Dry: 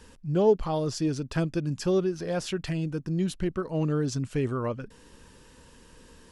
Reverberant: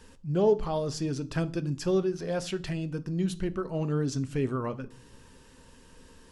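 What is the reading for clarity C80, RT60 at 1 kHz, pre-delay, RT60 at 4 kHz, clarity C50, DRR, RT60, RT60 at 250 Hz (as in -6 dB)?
24.5 dB, 0.50 s, 4 ms, 0.40 s, 20.0 dB, 10.5 dB, 0.50 s, 0.90 s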